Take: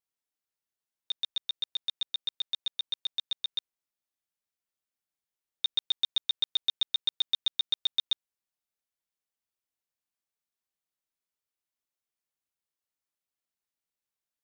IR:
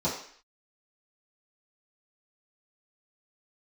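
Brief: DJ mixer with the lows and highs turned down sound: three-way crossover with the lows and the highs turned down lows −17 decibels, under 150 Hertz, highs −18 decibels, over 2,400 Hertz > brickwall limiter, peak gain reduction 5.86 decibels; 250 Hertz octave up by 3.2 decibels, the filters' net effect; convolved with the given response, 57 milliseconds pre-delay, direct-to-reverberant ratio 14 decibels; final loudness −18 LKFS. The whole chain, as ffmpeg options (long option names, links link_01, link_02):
-filter_complex "[0:a]equalizer=frequency=250:width_type=o:gain=5.5,asplit=2[link_01][link_02];[1:a]atrim=start_sample=2205,adelay=57[link_03];[link_02][link_03]afir=irnorm=-1:irlink=0,volume=-23.5dB[link_04];[link_01][link_04]amix=inputs=2:normalize=0,acrossover=split=150 2400:gain=0.141 1 0.126[link_05][link_06][link_07];[link_05][link_06][link_07]amix=inputs=3:normalize=0,volume=27dB,alimiter=limit=-6.5dB:level=0:latency=1"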